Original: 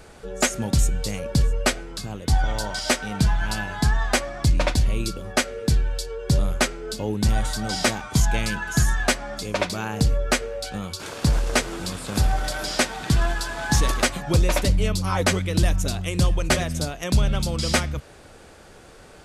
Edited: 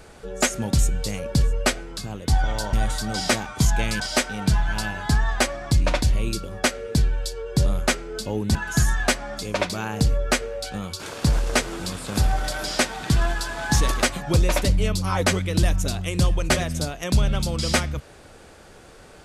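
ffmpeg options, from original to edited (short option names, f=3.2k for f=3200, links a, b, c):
-filter_complex "[0:a]asplit=4[a][b][c][d];[a]atrim=end=2.732[e];[b]atrim=start=7.278:end=8.552[f];[c]atrim=start=2.728:end=7.282[g];[d]atrim=start=8.548[h];[e][f]acrossfade=d=0.004:c1=hsin:c2=hsin[i];[i][g]acrossfade=d=0.004:c1=hsin:c2=hsin[j];[j][h]acrossfade=d=0.004:c1=hsin:c2=hsin"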